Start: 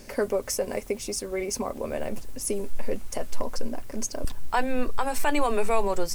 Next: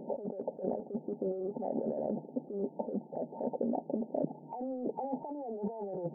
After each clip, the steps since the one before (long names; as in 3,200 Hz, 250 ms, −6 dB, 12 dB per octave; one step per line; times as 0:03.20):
brick-wall band-pass 150–920 Hz
compressor whose output falls as the input rises −36 dBFS, ratio −1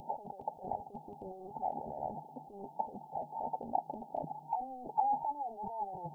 drawn EQ curve 110 Hz 0 dB, 200 Hz −23 dB, 550 Hz −23 dB, 830 Hz +3 dB, 1,400 Hz −26 dB, 2,800 Hz +4 dB
level +9.5 dB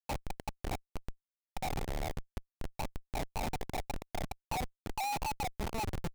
comparator with hysteresis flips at −36.5 dBFS
level +5.5 dB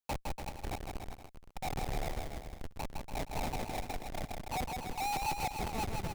brickwall limiter −32 dBFS, peak gain reduction 4 dB
on a send: bouncing-ball delay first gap 160 ms, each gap 0.8×, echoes 5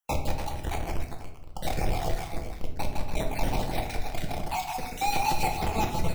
time-frequency cells dropped at random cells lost 31%
rectangular room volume 160 cubic metres, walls mixed, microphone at 0.7 metres
level +7 dB